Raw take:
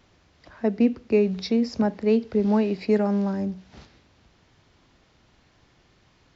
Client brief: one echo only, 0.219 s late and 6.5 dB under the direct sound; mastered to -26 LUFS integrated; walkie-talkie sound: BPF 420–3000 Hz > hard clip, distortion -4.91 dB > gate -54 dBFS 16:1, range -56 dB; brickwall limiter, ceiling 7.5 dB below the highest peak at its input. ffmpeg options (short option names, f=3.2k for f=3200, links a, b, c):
-af "alimiter=limit=-17dB:level=0:latency=1,highpass=420,lowpass=3k,aecho=1:1:219:0.473,asoftclip=type=hard:threshold=-37dB,agate=range=-56dB:threshold=-54dB:ratio=16,volume=14dB"